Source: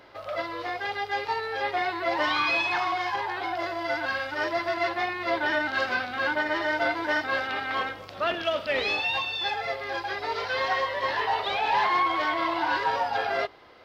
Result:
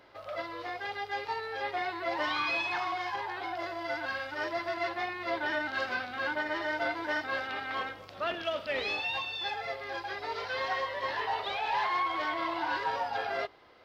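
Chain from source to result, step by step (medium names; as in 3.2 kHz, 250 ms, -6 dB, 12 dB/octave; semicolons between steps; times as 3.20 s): 11.52–12.15 s: peaking EQ 230 Hz -6.5 dB 1.4 oct; trim -6 dB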